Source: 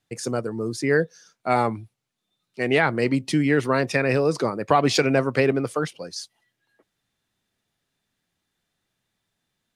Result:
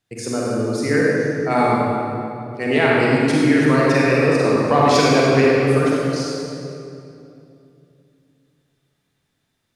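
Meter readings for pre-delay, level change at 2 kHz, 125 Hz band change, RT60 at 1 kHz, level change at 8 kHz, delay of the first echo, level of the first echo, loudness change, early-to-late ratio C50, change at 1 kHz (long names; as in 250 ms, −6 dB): 37 ms, +5.0 dB, +6.5 dB, 2.5 s, +4.5 dB, no echo audible, no echo audible, +5.5 dB, −4.0 dB, +5.5 dB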